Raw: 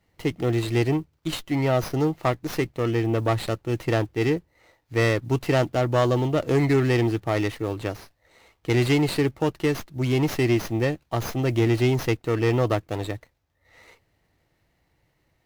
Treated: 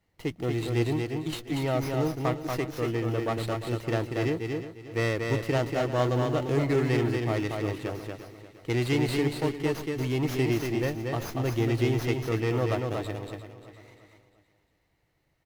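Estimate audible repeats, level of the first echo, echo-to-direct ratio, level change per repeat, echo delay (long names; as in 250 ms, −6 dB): 8, −4.0 dB, −3.0 dB, repeats not evenly spaced, 235 ms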